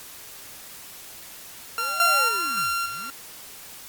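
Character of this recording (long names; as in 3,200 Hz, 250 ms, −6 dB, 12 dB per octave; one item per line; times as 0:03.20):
a buzz of ramps at a fixed pitch in blocks of 32 samples
sample-and-hold tremolo, depth 75%
a quantiser's noise floor 8 bits, dither triangular
Opus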